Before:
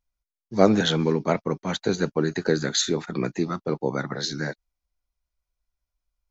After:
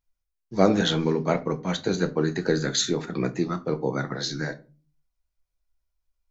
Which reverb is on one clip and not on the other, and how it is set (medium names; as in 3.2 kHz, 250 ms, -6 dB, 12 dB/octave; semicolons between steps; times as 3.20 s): simulated room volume 150 m³, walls furnished, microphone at 0.61 m; trim -1.5 dB